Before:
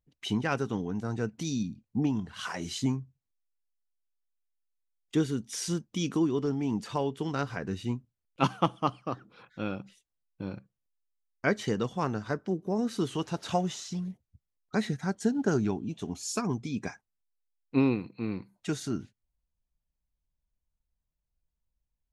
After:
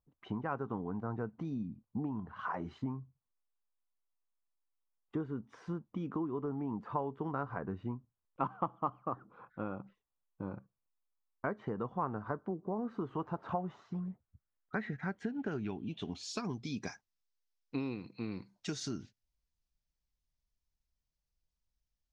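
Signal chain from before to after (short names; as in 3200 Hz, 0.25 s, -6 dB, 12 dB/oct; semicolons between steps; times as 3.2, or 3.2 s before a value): compressor 5:1, threshold -31 dBFS, peak gain reduction 12 dB; low-pass sweep 1100 Hz -> 5500 Hz, 13.87–16.95; gain -3.5 dB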